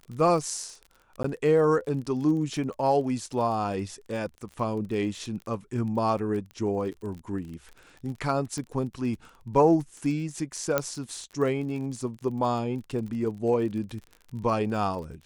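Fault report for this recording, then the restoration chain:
crackle 35 per s -36 dBFS
1.23–1.24 s: dropout 14 ms
6.51 s: pop -30 dBFS
8.58 s: pop -22 dBFS
10.78 s: pop -9 dBFS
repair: de-click; interpolate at 1.23 s, 14 ms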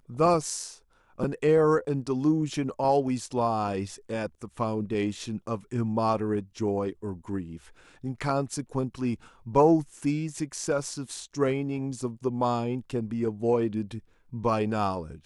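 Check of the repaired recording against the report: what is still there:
nothing left

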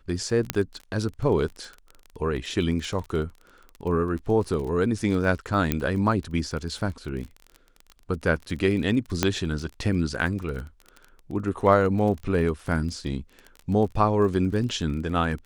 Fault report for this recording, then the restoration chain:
crackle 26 per s -32 dBFS
0.50 s: pop -6 dBFS
5.72 s: pop -8 dBFS
9.23 s: pop -5 dBFS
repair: de-click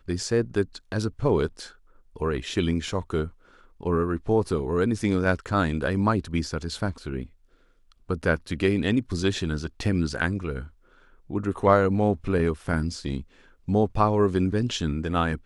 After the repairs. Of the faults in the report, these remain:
nothing left

